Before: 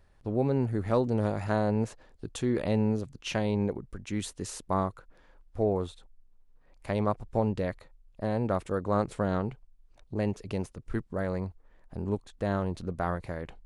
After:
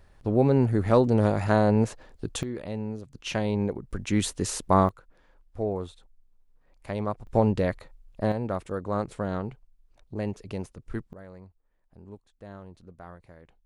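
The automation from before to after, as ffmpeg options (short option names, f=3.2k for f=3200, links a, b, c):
-af "asetnsamples=n=441:p=0,asendcmd='2.43 volume volume -6.5dB;3.13 volume volume 1.5dB;3.91 volume volume 8dB;4.89 volume volume -2dB;7.27 volume volume 5.5dB;8.32 volume volume -1.5dB;11.13 volume volume -14.5dB',volume=6dB"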